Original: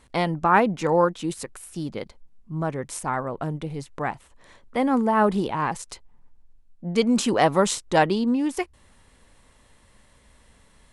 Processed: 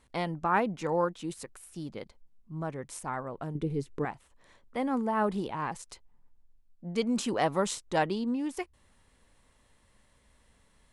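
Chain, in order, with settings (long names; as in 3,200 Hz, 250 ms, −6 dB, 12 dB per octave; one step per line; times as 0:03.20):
0:03.55–0:04.05: low shelf with overshoot 520 Hz +7 dB, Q 3
level −8.5 dB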